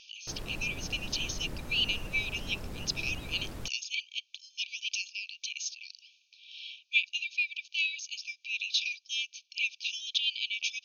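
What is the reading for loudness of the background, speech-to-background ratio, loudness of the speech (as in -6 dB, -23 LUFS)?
-43.5 LUFS, 11.0 dB, -32.5 LUFS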